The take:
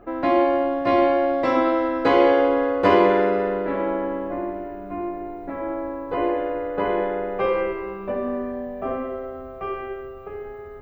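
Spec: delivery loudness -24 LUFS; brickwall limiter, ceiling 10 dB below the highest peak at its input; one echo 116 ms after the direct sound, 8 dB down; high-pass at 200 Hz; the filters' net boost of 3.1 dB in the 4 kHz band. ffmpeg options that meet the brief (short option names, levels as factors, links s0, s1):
-af "highpass=200,equalizer=f=4000:t=o:g=4.5,alimiter=limit=0.2:level=0:latency=1,aecho=1:1:116:0.398,volume=1.06"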